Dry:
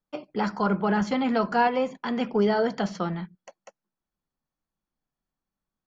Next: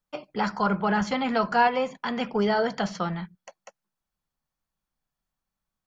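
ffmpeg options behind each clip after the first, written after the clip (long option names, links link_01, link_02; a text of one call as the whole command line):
ffmpeg -i in.wav -af "equalizer=frequency=310:width_type=o:width=1.5:gain=-7.5,volume=3dB" out.wav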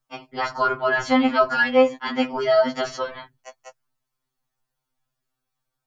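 ffmpeg -i in.wav -af "afftfilt=real='re*2.45*eq(mod(b,6),0)':imag='im*2.45*eq(mod(b,6),0)':win_size=2048:overlap=0.75,volume=6.5dB" out.wav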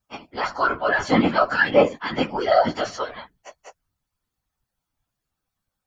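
ffmpeg -i in.wav -af "afftfilt=real='hypot(re,im)*cos(2*PI*random(0))':imag='hypot(re,im)*sin(2*PI*random(1))':win_size=512:overlap=0.75,volume=6dB" out.wav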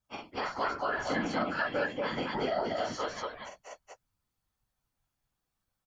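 ffmpeg -i in.wav -af "acompressor=threshold=-26dB:ratio=5,aecho=1:1:43.73|236.2:0.631|0.891,volume=-6dB" out.wav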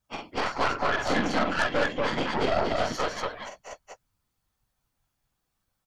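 ffmpeg -i in.wav -af "aeval=exprs='0.126*(cos(1*acos(clip(val(0)/0.126,-1,1)))-cos(1*PI/2))+0.02*(cos(6*acos(clip(val(0)/0.126,-1,1)))-cos(6*PI/2))':channel_layout=same,volume=5dB" out.wav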